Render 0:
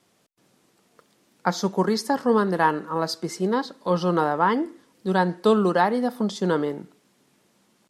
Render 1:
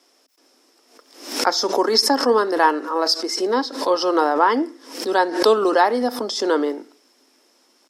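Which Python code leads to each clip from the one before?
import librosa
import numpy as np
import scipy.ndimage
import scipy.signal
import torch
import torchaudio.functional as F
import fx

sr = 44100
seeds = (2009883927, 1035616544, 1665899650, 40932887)

y = scipy.signal.sosfilt(scipy.signal.ellip(4, 1.0, 40, 260.0, 'highpass', fs=sr, output='sos'), x)
y = fx.peak_eq(y, sr, hz=5300.0, db=15.0, octaves=0.21)
y = fx.pre_swell(y, sr, db_per_s=100.0)
y = y * 10.0 ** (4.5 / 20.0)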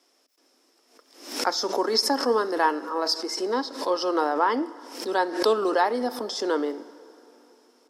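y = fx.rev_plate(x, sr, seeds[0], rt60_s=3.7, hf_ratio=0.75, predelay_ms=0, drr_db=18.0)
y = y * 10.0 ** (-6.0 / 20.0)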